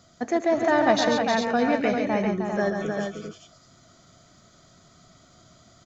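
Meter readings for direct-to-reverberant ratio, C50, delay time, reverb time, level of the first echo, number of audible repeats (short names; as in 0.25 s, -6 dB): none, none, 75 ms, none, -19.5 dB, 4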